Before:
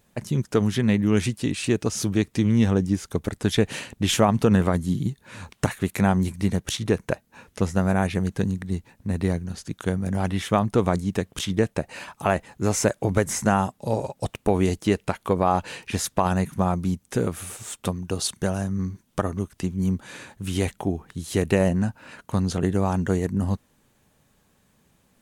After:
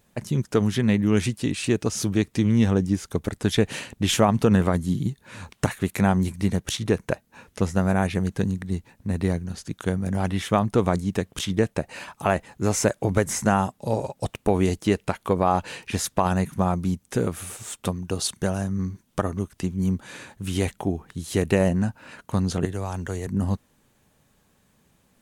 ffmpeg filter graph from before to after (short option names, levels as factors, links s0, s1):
-filter_complex "[0:a]asettb=1/sr,asplit=3[s0][s1][s2];[s0]atrim=end=22.654[s3];[s1]atrim=start=22.65:end=23.27,asetpts=PTS-STARTPTS,afade=t=in:d=0.004:c=qsin,afade=t=out:st=0.616:d=0.004:c=qsin,equalizer=f=190:t=o:w=1.5:g=-9,acrossover=split=140|3000[s4][s5][s6];[s5]acompressor=threshold=0.0282:ratio=2:attack=3.2:release=140:knee=2.83:detection=peak[s7];[s4][s7][s6]amix=inputs=3:normalize=0[s8];[s2]atrim=start=23.266[s9];[s3][s8]acrossfade=d=0.004:c1=hsin:c2=qsin[s10];[s10][s9]acrossfade=d=0.004:c1=qsin:c2=hsin"